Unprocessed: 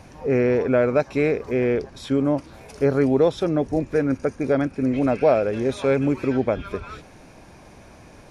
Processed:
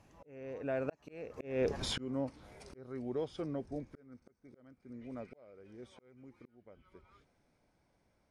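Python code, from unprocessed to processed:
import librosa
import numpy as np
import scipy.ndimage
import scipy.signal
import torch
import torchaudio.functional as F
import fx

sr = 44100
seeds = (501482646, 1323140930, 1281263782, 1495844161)

y = fx.doppler_pass(x, sr, speed_mps=25, closest_m=2.1, pass_at_s=1.79)
y = fx.auto_swell(y, sr, attack_ms=689.0)
y = y * librosa.db_to_amplitude(8.5)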